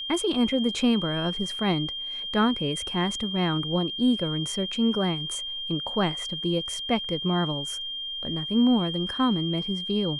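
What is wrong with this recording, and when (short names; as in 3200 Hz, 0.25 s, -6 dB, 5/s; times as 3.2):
tone 3200 Hz -31 dBFS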